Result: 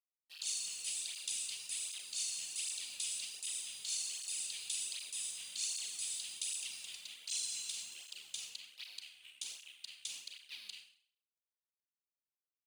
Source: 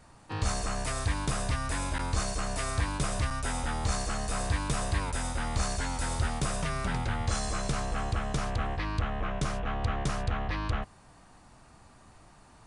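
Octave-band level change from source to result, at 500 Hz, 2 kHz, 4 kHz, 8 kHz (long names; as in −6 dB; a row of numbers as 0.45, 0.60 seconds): below −35 dB, −15.0 dB, −1.0 dB, +0.5 dB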